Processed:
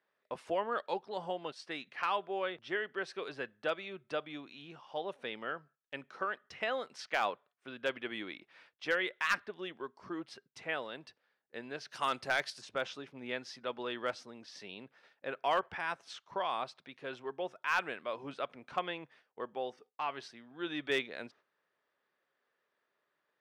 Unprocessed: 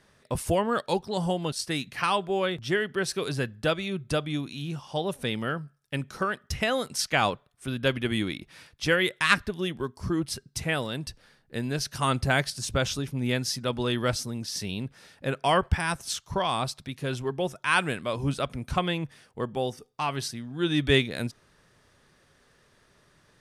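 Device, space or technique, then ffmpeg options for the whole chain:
walkie-talkie: -filter_complex "[0:a]asplit=3[link_01][link_02][link_03];[link_01]afade=type=out:start_time=11.89:duration=0.02[link_04];[link_02]aemphasis=mode=production:type=75kf,afade=type=in:start_time=11.89:duration=0.02,afade=type=out:start_time=12.6:duration=0.02[link_05];[link_03]afade=type=in:start_time=12.6:duration=0.02[link_06];[link_04][link_05][link_06]amix=inputs=3:normalize=0,highpass=440,lowpass=2800,asoftclip=type=hard:threshold=-15dB,agate=range=-10dB:threshold=-55dB:ratio=16:detection=peak,volume=-6.5dB"

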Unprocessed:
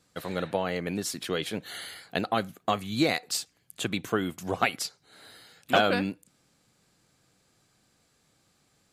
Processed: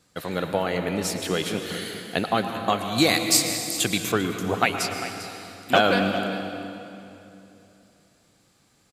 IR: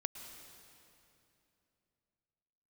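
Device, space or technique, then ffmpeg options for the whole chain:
cave: -filter_complex "[0:a]aecho=1:1:397:0.2[link_01];[1:a]atrim=start_sample=2205[link_02];[link_01][link_02]afir=irnorm=-1:irlink=0,asettb=1/sr,asplit=3[link_03][link_04][link_05];[link_03]atrim=end=2.984[link_06];[link_04]atrim=start=2.98:end=4.12,asetpts=PTS-STARTPTS,afade=type=in:duration=0.004:curve=qsin,afade=type=out:start_time=1.136:duration=0.004:curve=qsin,highshelf=frequency=4400:gain=11[link_07];[link_05]atrim=start=4.116[link_08];[link_06][link_07]acrossfade=duration=0.004:curve1=hsin:curve2=qsin[link_09];[link_09][link_08]acrossfade=duration=0.004:curve1=qsin:curve2=hsin,volume=5.5dB"

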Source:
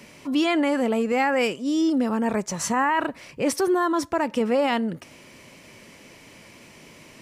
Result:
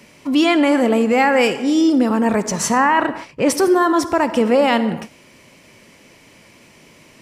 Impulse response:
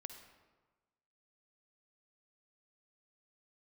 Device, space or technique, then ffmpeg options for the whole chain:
keyed gated reverb: -filter_complex "[0:a]asplit=3[link_01][link_02][link_03];[1:a]atrim=start_sample=2205[link_04];[link_02][link_04]afir=irnorm=-1:irlink=0[link_05];[link_03]apad=whole_len=318081[link_06];[link_05][link_06]sidechaingate=range=-33dB:threshold=-40dB:ratio=16:detection=peak,volume=7dB[link_07];[link_01][link_07]amix=inputs=2:normalize=0,asettb=1/sr,asplit=3[link_08][link_09][link_10];[link_08]atrim=end=2.784[link_11];[link_09]atrim=start=2.78:end=3.5,asetpts=PTS-STARTPTS,afade=type=in:duration=0.004:curve=qsin,afade=type=out:start_time=0.716:duration=0.004:curve=qsin,highshelf=frequency=9700:gain=-10[link_12];[link_10]atrim=start=3.496[link_13];[link_11][link_12]acrossfade=duration=0.004:curve1=hsin:curve2=qsin[link_14];[link_14][link_13]acrossfade=duration=0.004:curve1=qsin:curve2=hsin"

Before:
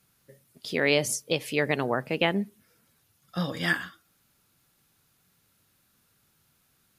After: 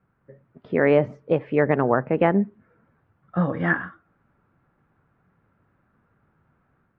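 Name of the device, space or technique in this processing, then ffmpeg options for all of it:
action camera in a waterproof case: -af "lowpass=frequency=1600:width=0.5412,lowpass=frequency=1600:width=1.3066,dynaudnorm=framelen=200:gausssize=3:maxgain=4dB,volume=3.5dB" -ar 32000 -c:a aac -b:a 64k

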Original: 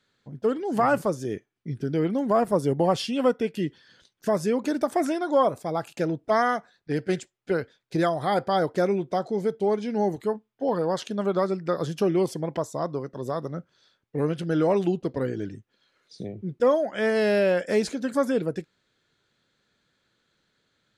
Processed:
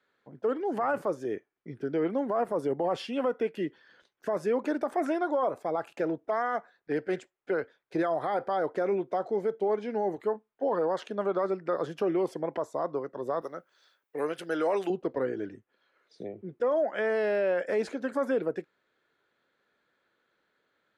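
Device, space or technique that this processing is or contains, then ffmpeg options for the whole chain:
DJ mixer with the lows and highs turned down: -filter_complex "[0:a]asettb=1/sr,asplit=3[link_01][link_02][link_03];[link_01]atrim=end=13.414[link_04];[link_02]atrim=start=13.41:end=14.9,asetpts=PTS-STARTPTS,afade=type=in:duration=0.004:curve=qsin,afade=type=out:start_time=1.486:duration=0.004:curve=qsin,aemphasis=mode=production:type=riaa[link_05];[link_03]atrim=start=14.896[link_06];[link_04][link_05]acrossfade=duration=0.004:curve1=hsin:curve2=qsin[link_07];[link_07][link_06]acrossfade=duration=0.004:curve1=qsin:curve2=hsin,acrossover=split=300 2400:gain=0.158 1 0.178[link_08][link_09][link_10];[link_08][link_09][link_10]amix=inputs=3:normalize=0,alimiter=limit=-21dB:level=0:latency=1:release=23,volume=1dB"

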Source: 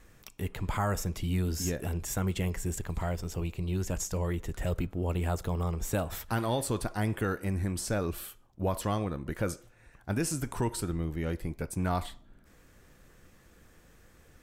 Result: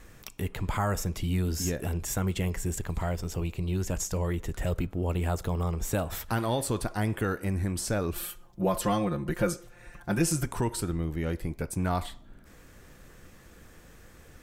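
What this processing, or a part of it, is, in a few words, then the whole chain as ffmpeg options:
parallel compression: -filter_complex "[0:a]asettb=1/sr,asplit=3[link_01][link_02][link_03];[link_01]atrim=end=8.154[link_04];[link_02]atrim=start=8.15:end=10.46,asetpts=PTS-STARTPTS,afade=type=in:duration=0.004:curve=qsin,afade=type=out:start_time=2.306:duration=0.004:curve=qsin,aecho=1:1:5.7:0.98,atrim=end_sample=101871[link_05];[link_03]atrim=start=10.456[link_06];[link_04][link_05]acrossfade=duration=0.004:curve1=hsin:curve2=qsin[link_07];[link_07][link_06]acrossfade=duration=0.004:curve1=qsin:curve2=hsin,asplit=2[link_08][link_09];[link_09]acompressor=threshold=-42dB:ratio=6,volume=0dB[link_10];[link_08][link_10]amix=inputs=2:normalize=0"

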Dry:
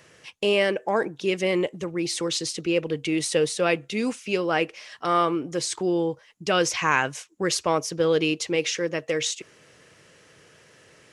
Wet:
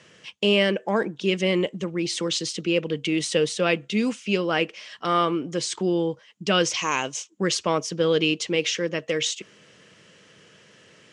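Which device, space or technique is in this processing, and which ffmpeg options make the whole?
car door speaker: -filter_complex "[0:a]highpass=87,equalizer=frequency=200:width_type=q:width=4:gain=8,equalizer=frequency=780:width_type=q:width=4:gain=-3,equalizer=frequency=3100:width_type=q:width=4:gain=6,lowpass=frequency=8400:width=0.5412,lowpass=frequency=8400:width=1.3066,asettb=1/sr,asplit=3[link_01][link_02][link_03];[link_01]atrim=end=6.744[link_04];[link_02]atrim=start=6.74:end=7.3,asetpts=PTS-STARTPTS,afade=type=in:duration=0.004:curve=qsin,afade=type=out:start_time=0.556:duration=0.004:curve=qsin,equalizer=frequency=160:width_type=o:width=0.67:gain=-9,equalizer=frequency=1600:width_type=o:width=0.67:gain=-10,equalizer=frequency=6300:width_type=o:width=0.67:gain=9[link_05];[link_03]atrim=start=7.296[link_06];[link_04][link_05]acrossfade=duration=0.004:curve1=hsin:curve2=qsin[link_07];[link_07][link_06]acrossfade=duration=0.004:curve1=qsin:curve2=hsin"

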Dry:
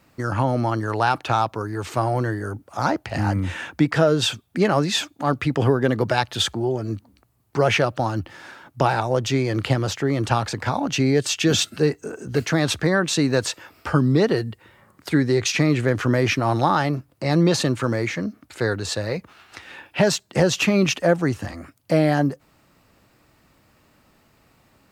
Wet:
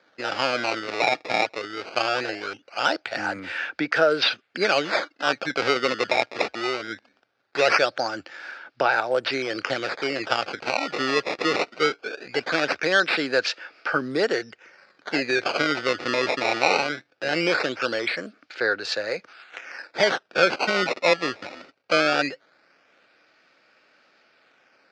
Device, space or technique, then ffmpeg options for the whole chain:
circuit-bent sampling toy: -af "acrusher=samples=16:mix=1:aa=0.000001:lfo=1:lforange=25.6:lforate=0.2,highpass=440,equalizer=frequency=520:width_type=q:width=4:gain=3,equalizer=frequency=1000:width_type=q:width=4:gain=-7,equalizer=frequency=1500:width_type=q:width=4:gain=9,equalizer=frequency=2400:width_type=q:width=4:gain=6,equalizer=frequency=4800:width_type=q:width=4:gain=7,lowpass=frequency=5300:width=0.5412,lowpass=frequency=5300:width=1.3066,volume=-1dB"

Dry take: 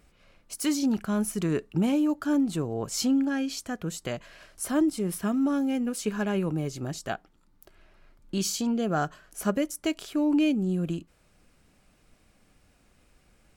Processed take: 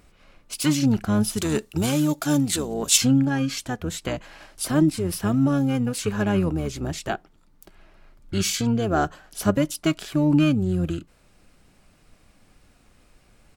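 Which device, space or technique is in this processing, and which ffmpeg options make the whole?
octave pedal: -filter_complex "[0:a]asplit=3[link_01][link_02][link_03];[link_01]afade=type=out:start_time=1.36:duration=0.02[link_04];[link_02]bass=frequency=250:gain=-7,treble=frequency=4000:gain=14,afade=type=in:start_time=1.36:duration=0.02,afade=type=out:start_time=2.96:duration=0.02[link_05];[link_03]afade=type=in:start_time=2.96:duration=0.02[link_06];[link_04][link_05][link_06]amix=inputs=3:normalize=0,asplit=2[link_07][link_08];[link_08]asetrate=22050,aresample=44100,atempo=2,volume=-5dB[link_09];[link_07][link_09]amix=inputs=2:normalize=0,volume=4dB"

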